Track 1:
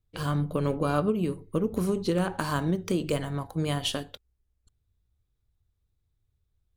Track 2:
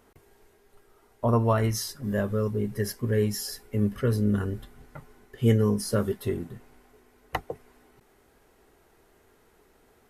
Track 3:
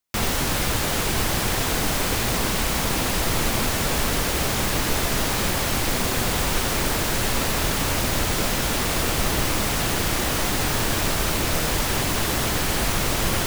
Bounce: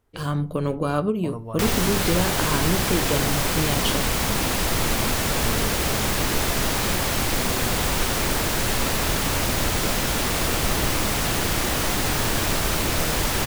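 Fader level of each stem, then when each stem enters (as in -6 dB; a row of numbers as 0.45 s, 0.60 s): +2.5 dB, -12.5 dB, 0.0 dB; 0.00 s, 0.00 s, 1.45 s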